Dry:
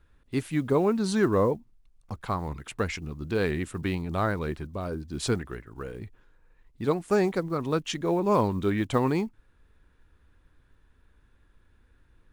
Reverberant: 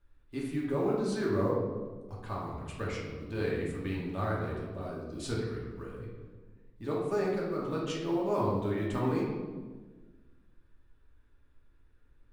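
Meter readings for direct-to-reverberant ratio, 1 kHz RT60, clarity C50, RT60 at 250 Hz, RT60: -5.0 dB, 1.3 s, 1.0 dB, 1.8 s, 1.4 s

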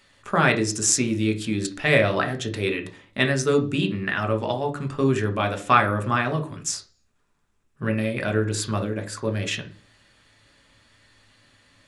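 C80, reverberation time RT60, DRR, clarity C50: 19.5 dB, 0.40 s, 5.0 dB, 14.0 dB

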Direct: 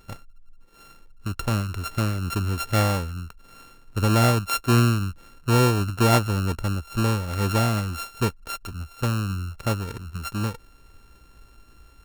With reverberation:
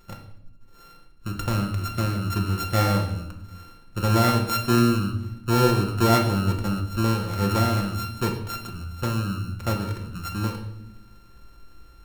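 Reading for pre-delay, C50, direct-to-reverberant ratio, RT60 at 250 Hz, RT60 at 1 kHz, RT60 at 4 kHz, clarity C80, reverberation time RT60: 6 ms, 7.0 dB, 1.5 dB, 1.5 s, 0.70 s, 0.70 s, 10.0 dB, 0.80 s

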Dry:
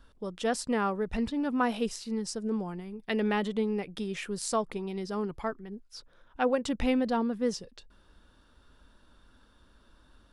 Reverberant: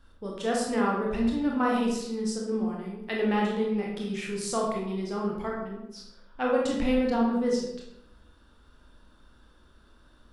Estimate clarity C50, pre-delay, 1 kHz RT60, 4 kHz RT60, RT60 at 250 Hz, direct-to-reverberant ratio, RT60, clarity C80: 2.0 dB, 21 ms, 0.80 s, 0.55 s, 1.0 s, -2.5 dB, 0.80 s, 5.5 dB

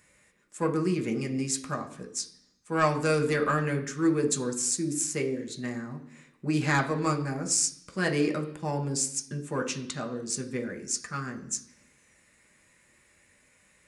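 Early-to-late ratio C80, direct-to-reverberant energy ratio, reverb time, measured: 14.5 dB, 2.5 dB, 0.65 s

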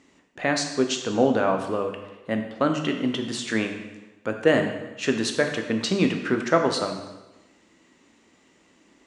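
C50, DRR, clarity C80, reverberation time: 7.0 dB, 4.0 dB, 8.5 dB, 1.1 s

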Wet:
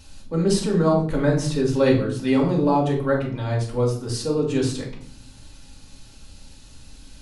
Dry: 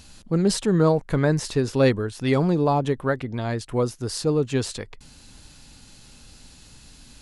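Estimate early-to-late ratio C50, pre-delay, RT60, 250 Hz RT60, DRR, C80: 7.0 dB, 3 ms, 0.60 s, 1.0 s, -2.5 dB, 11.0 dB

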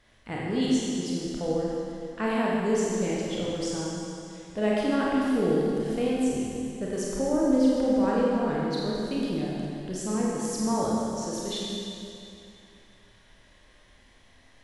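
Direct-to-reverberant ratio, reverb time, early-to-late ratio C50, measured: -5.5 dB, 2.6 s, -3.0 dB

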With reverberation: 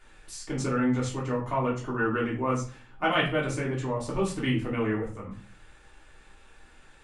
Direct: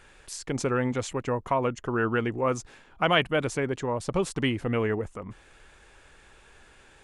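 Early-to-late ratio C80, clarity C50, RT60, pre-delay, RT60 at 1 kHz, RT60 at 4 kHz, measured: 13.0 dB, 7.5 dB, 0.40 s, 3 ms, 0.40 s, 0.30 s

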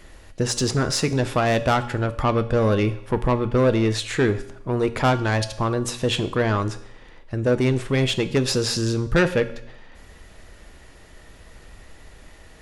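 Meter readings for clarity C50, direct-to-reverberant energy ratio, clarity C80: 14.0 dB, 10.5 dB, 16.5 dB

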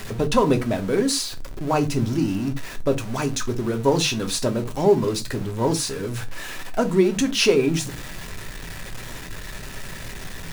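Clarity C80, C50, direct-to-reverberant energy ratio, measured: 28.0 dB, 19.0 dB, 5.5 dB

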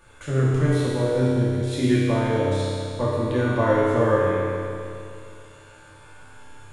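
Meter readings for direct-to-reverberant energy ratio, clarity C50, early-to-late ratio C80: -9.5 dB, -4.0 dB, -2.0 dB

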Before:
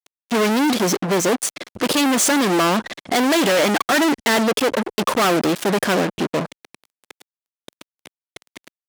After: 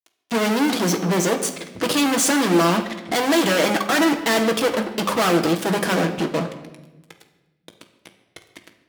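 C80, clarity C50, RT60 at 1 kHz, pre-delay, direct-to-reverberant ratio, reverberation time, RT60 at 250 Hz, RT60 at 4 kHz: 12.0 dB, 9.5 dB, 0.95 s, 6 ms, 4.5 dB, 1.1 s, 1.5 s, 0.85 s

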